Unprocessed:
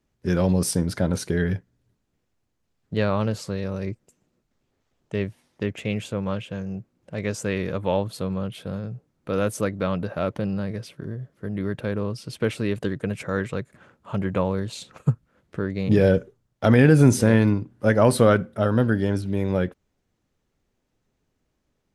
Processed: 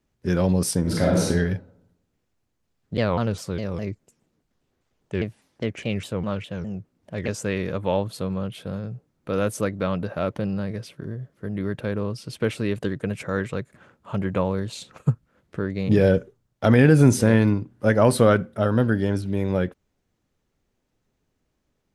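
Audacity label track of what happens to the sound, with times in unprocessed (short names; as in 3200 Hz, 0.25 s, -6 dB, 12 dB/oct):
0.810000	1.250000	reverb throw, RT60 0.87 s, DRR -5 dB
2.970000	7.280000	shaped vibrato saw down 4.9 Hz, depth 250 cents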